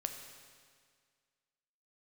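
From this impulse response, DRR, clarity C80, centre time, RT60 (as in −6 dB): 5.0 dB, 7.5 dB, 37 ms, 1.9 s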